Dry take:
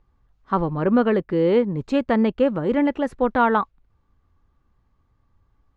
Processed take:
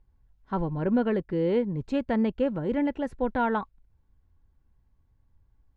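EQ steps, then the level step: Butterworth band-stop 1200 Hz, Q 7.1; low shelf 140 Hz +9 dB; -8.0 dB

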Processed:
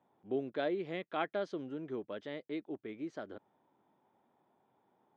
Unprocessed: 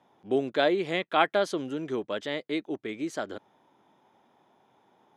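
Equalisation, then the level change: dynamic EQ 5400 Hz, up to +4 dB, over -51 dBFS, Q 1.4; dynamic EQ 920 Hz, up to -4 dB, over -37 dBFS, Q 1.5; tape spacing loss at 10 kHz 28 dB; -7.5 dB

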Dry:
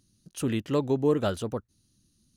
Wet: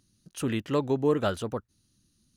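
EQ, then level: bell 1500 Hz +4.5 dB 2.1 oct; -1.5 dB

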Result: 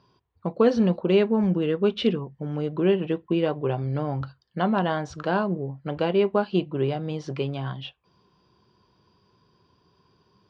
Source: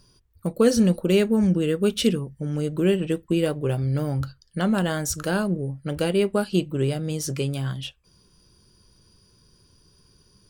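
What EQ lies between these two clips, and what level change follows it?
speaker cabinet 110–3900 Hz, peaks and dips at 390 Hz +3 dB, 730 Hz +8 dB, 1000 Hz +10 dB; -2.5 dB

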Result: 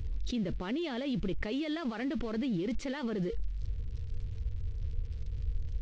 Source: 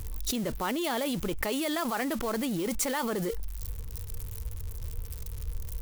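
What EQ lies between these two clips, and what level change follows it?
Gaussian blur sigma 2.3 samples; bell 960 Hz -14 dB 1.9 oct; +1.5 dB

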